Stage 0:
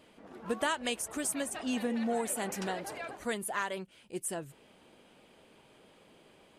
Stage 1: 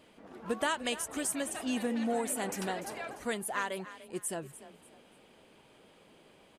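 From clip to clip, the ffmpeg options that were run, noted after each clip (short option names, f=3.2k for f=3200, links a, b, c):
-filter_complex "[0:a]asplit=4[a][b][c][d];[b]adelay=294,afreqshift=30,volume=-15dB[e];[c]adelay=588,afreqshift=60,volume=-25.2dB[f];[d]adelay=882,afreqshift=90,volume=-35.3dB[g];[a][e][f][g]amix=inputs=4:normalize=0"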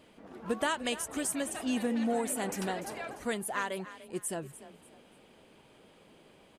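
-af "lowshelf=f=340:g=3"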